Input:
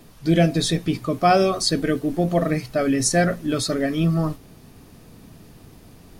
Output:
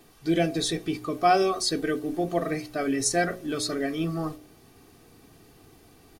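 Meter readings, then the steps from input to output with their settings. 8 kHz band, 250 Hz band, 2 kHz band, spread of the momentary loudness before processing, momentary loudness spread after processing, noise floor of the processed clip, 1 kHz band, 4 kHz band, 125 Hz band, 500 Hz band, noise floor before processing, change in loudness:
-4.0 dB, -6.5 dB, -4.0 dB, 6 LU, 8 LU, -56 dBFS, -3.0 dB, -4.5 dB, -12.0 dB, -5.0 dB, -48 dBFS, -5.5 dB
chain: bass shelf 92 Hz -11 dB; comb 2.6 ms, depth 46%; de-hum 60.52 Hz, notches 11; trim -5 dB

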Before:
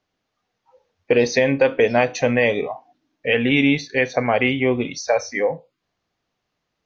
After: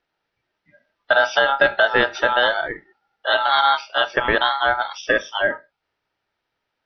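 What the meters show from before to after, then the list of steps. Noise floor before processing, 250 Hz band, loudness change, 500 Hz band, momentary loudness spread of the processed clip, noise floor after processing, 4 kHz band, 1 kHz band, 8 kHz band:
-78 dBFS, -13.0 dB, +0.5 dB, -3.0 dB, 8 LU, -79 dBFS, +7.0 dB, +8.0 dB, no reading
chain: knee-point frequency compression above 2.8 kHz 1.5:1; band-pass 120–4600 Hz; ring modulator 1.1 kHz; trim +3 dB

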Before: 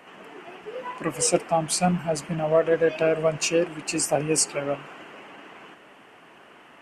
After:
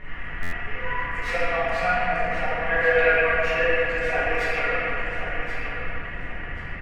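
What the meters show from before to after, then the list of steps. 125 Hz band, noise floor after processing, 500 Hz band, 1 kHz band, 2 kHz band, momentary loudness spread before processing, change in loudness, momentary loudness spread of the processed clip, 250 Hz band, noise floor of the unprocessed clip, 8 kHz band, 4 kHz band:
-4.0 dB, -33 dBFS, -1.0 dB, +3.5 dB, +13.0 dB, 21 LU, 0.0 dB, 14 LU, -8.5 dB, -51 dBFS, under -20 dB, -3.0 dB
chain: tracing distortion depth 0.19 ms; differentiator; comb 4.2 ms, depth 94%; slow attack 147 ms; added noise brown -50 dBFS; resonant low-pass 1.9 kHz, resonance Q 4.3; on a send: feedback delay 1081 ms, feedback 26%, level -10 dB; on the sum: simulated room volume 120 m³, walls hard, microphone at 1.1 m; buffer glitch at 0.42 s, samples 512, times 8; trim +6 dB

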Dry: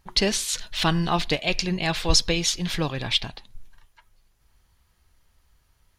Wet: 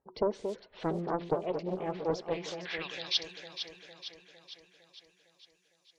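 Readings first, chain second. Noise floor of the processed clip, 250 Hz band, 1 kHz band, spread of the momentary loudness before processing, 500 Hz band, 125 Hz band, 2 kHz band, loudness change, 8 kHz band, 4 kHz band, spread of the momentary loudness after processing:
-71 dBFS, -10.0 dB, -8.5 dB, 6 LU, -3.0 dB, -14.5 dB, -13.5 dB, -11.5 dB, -23.5 dB, -12.5 dB, 16 LU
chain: vibrato 2.3 Hz 29 cents; band-pass sweep 450 Hz -> 6.4 kHz, 2.10–3.25 s; spectral gate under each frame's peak -25 dB strong; on a send: echo whose repeats swap between lows and highs 228 ms, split 2 kHz, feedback 75%, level -7 dB; on the sum: loudspeaker Doppler distortion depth 0.49 ms

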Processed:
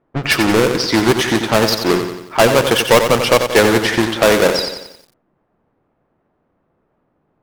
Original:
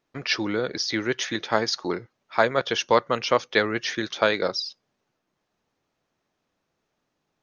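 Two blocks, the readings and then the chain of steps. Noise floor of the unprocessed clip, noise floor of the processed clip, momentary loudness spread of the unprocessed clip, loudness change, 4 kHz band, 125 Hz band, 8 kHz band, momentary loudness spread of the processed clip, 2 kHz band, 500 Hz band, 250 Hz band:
-78 dBFS, -66 dBFS, 7 LU, +10.5 dB, +9.5 dB, +15.5 dB, no reading, 6 LU, +9.5 dB, +11.5 dB, +13.5 dB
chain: square wave that keeps the level; level-controlled noise filter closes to 1.4 kHz, open at -17.5 dBFS; treble shelf 2.7 kHz -4 dB; in parallel at -9 dB: sine folder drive 10 dB, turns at -2.5 dBFS; on the sum: bit-crushed delay 90 ms, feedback 55%, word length 7-bit, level -7.5 dB

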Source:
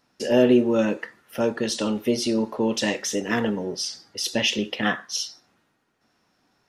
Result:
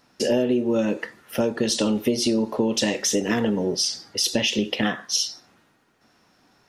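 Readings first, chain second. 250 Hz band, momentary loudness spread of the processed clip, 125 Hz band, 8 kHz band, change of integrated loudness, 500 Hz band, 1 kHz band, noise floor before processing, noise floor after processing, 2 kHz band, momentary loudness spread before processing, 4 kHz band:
+0.5 dB, 5 LU, +1.5 dB, +4.5 dB, +0.5 dB, -0.5 dB, -1.5 dB, -69 dBFS, -62 dBFS, -1.5 dB, 10 LU, +3.0 dB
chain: compression 10:1, threshold -24 dBFS, peak gain reduction 12.5 dB; dynamic bell 1.4 kHz, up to -5 dB, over -45 dBFS, Q 0.82; trim +7 dB

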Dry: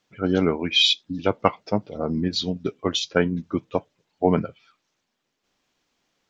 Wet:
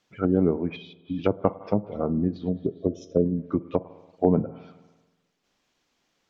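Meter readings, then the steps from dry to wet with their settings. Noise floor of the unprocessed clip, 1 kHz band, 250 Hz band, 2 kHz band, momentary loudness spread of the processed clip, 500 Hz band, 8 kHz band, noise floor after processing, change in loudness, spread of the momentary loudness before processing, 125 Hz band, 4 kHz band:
-78 dBFS, -6.5 dB, 0.0 dB, under -15 dB, 8 LU, -1.0 dB, no reading, -74 dBFS, -3.0 dB, 10 LU, 0.0 dB, under -25 dB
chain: time-frequency box 2.49–3.26 s, 680–5100 Hz -25 dB; spring tank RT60 1.2 s, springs 48/54 ms, chirp 55 ms, DRR 17 dB; low-pass that closes with the level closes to 590 Hz, closed at -20 dBFS

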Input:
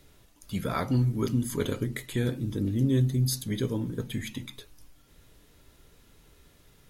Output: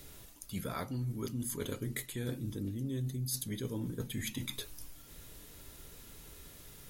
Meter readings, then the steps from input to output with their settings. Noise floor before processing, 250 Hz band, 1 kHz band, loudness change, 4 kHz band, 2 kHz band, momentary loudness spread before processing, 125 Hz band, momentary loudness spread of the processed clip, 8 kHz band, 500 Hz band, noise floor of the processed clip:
-60 dBFS, -10.0 dB, -9.0 dB, -9.5 dB, -4.5 dB, -6.0 dB, 11 LU, -10.5 dB, 15 LU, -2.0 dB, -9.5 dB, -54 dBFS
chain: treble shelf 6.6 kHz +10.5 dB; reverse; compression 6:1, threshold -39 dBFS, peak gain reduction 17 dB; reverse; trim +3.5 dB

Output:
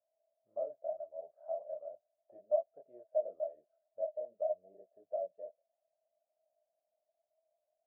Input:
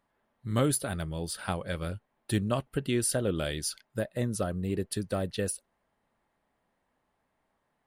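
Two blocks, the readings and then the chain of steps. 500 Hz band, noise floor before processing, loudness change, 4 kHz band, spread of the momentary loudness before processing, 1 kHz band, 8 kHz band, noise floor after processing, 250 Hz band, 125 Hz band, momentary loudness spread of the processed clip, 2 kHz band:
-3.5 dB, -78 dBFS, -8.5 dB, under -40 dB, 8 LU, -9.0 dB, under -40 dB, under -85 dBFS, under -35 dB, under -40 dB, 16 LU, under -40 dB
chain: chorus voices 4, 0.97 Hz, delay 24 ms, depth 3 ms; Butterworth band-pass 640 Hz, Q 7.7; tilt EQ -3 dB/octave; trim +5.5 dB

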